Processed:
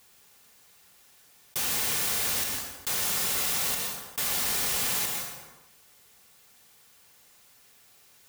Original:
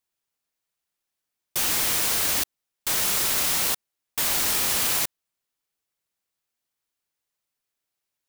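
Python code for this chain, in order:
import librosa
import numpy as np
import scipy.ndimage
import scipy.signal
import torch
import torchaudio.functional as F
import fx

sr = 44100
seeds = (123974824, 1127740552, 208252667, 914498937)

y = fx.notch_comb(x, sr, f0_hz=320.0)
y = fx.rev_plate(y, sr, seeds[0], rt60_s=0.58, hf_ratio=0.8, predelay_ms=110, drr_db=5.0)
y = fx.env_flatten(y, sr, amount_pct=50)
y = F.gain(torch.from_numpy(y), -4.5).numpy()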